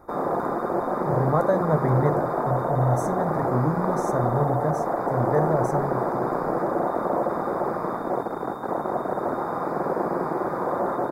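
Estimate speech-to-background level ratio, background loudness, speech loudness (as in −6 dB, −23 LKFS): −0.5 dB, −26.0 LKFS, −26.5 LKFS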